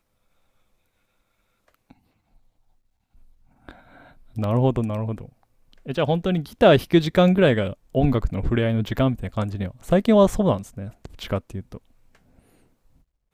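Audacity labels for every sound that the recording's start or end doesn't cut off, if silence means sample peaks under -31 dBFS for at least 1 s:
3.690000	11.770000	sound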